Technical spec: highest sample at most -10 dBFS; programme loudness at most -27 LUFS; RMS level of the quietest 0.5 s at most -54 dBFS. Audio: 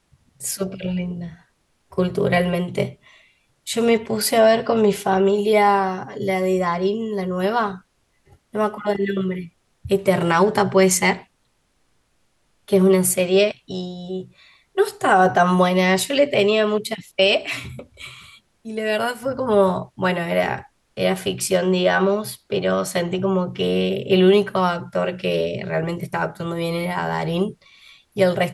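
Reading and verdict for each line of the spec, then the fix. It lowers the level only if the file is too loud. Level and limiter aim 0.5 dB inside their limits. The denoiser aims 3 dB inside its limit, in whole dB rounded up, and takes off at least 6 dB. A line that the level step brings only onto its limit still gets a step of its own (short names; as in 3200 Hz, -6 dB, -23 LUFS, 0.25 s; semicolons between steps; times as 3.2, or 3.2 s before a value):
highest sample -5.5 dBFS: fail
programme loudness -20.0 LUFS: fail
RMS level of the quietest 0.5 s -66 dBFS: OK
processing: gain -7.5 dB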